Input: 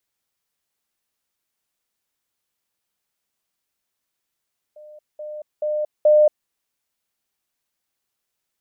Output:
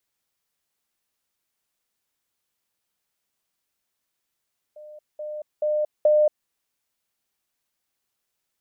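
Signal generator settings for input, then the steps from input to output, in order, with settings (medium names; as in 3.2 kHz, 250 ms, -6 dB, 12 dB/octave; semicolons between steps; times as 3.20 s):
level ladder 604 Hz -40 dBFS, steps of 10 dB, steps 4, 0.23 s 0.20 s
compression, threshold -16 dBFS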